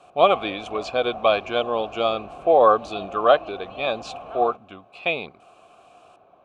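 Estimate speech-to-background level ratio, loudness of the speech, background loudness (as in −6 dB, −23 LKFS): 15.5 dB, −22.0 LKFS, −37.5 LKFS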